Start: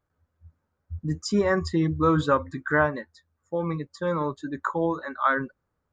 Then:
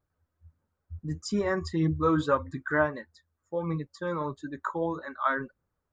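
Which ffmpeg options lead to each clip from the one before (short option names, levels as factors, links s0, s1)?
-af "flanger=delay=0.1:depth=3.1:regen=60:speed=1.6:shape=sinusoidal"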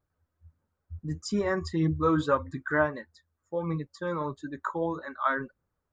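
-af anull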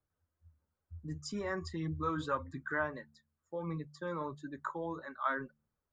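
-filter_complex "[0:a]acrossover=split=120|810|4000[s0][s1][s2][s3];[s1]alimiter=level_in=1.26:limit=0.0631:level=0:latency=1,volume=0.794[s4];[s0][s4][s2][s3]amix=inputs=4:normalize=0,bandreject=f=73.97:t=h:w=4,bandreject=f=147.94:t=h:w=4,bandreject=f=221.91:t=h:w=4,volume=0.473"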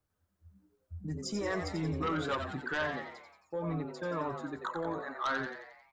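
-filter_complex "[0:a]aeval=exprs='0.1*(cos(1*acos(clip(val(0)/0.1,-1,1)))-cos(1*PI/2))+0.0398*(cos(5*acos(clip(val(0)/0.1,-1,1)))-cos(5*PI/2))':c=same,asplit=7[s0][s1][s2][s3][s4][s5][s6];[s1]adelay=89,afreqshift=110,volume=0.422[s7];[s2]adelay=178,afreqshift=220,volume=0.224[s8];[s3]adelay=267,afreqshift=330,volume=0.119[s9];[s4]adelay=356,afreqshift=440,volume=0.0631[s10];[s5]adelay=445,afreqshift=550,volume=0.0331[s11];[s6]adelay=534,afreqshift=660,volume=0.0176[s12];[s0][s7][s8][s9][s10][s11][s12]amix=inputs=7:normalize=0,volume=0.531"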